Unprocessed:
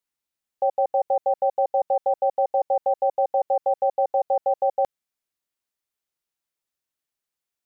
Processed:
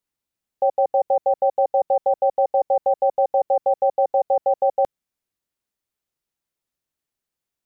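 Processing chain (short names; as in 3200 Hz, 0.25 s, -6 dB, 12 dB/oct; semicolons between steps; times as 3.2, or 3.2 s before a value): low shelf 480 Hz +8 dB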